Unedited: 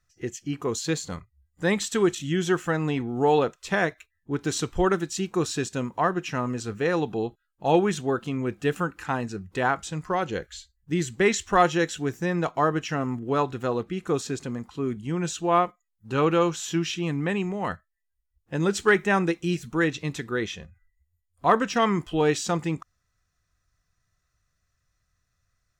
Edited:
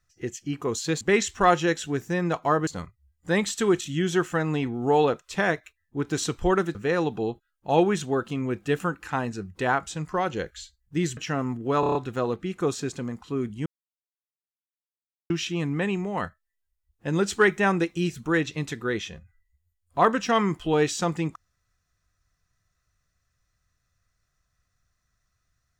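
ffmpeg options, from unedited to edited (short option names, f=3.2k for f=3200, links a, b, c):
-filter_complex "[0:a]asplit=12[a][b][c][d][e][f][g][h][i][j][k][l];[a]atrim=end=1.012[m];[b]atrim=start=11.128:end=12.792[n];[c]atrim=start=1.008:end=5.092[o];[d]atrim=start=6.708:end=11.132[p];[e]atrim=start=12.788:end=13.452[q];[f]atrim=start=13.418:end=13.452[r];[g]atrim=start=13.418:end=13.452[s];[h]atrim=start=13.418:end=13.452[t];[i]atrim=start=13.418:end=13.452[u];[j]atrim=start=13.418:end=15.13,asetpts=PTS-STARTPTS,afade=t=out:st=1.708:d=0.004:c=hsin[v];[k]atrim=start=15.13:end=16.77,asetpts=PTS-STARTPTS,volume=0[w];[l]atrim=start=16.77,asetpts=PTS-STARTPTS,afade=t=in:d=0.004:c=hsin[x];[m][n]acrossfade=d=0.004:c1=hsin:c2=hsin[y];[y][o]acrossfade=d=0.004:c1=hsin:c2=hsin[z];[z][p]acrossfade=d=0.004:c1=hsin:c2=hsin[aa];[aa][q]acrossfade=d=0.004:c1=hsin:c2=hsin[ab];[ab][r]acrossfade=d=0.004:c1=hsin:c2=hsin[ac];[ac][s]acrossfade=d=0.004:c1=hsin:c2=hsin[ad];[ad][t]acrossfade=d=0.004:c1=hsin:c2=hsin[ae];[ae][u]acrossfade=d=0.004:c1=hsin:c2=hsin[af];[v][w][x]concat=n=3:v=0:a=1[ag];[af][ag]acrossfade=d=0.004:c1=hsin:c2=hsin"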